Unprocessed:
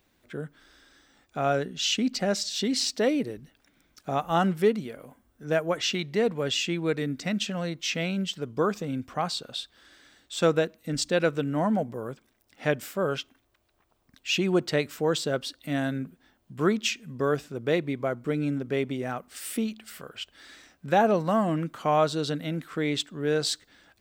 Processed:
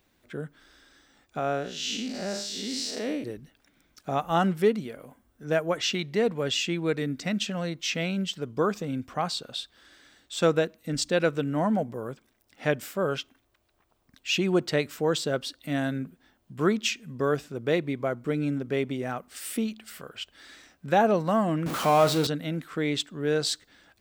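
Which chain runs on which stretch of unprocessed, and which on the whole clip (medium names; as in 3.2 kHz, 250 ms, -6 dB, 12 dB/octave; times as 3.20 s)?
1.39–3.24 s: spectral blur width 174 ms + peaking EQ 97 Hz -5 dB 2 oct
21.66–22.27 s: jump at every zero crossing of -26.5 dBFS + high-pass 57 Hz + flutter echo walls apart 7.5 m, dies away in 0.2 s
whole clip: none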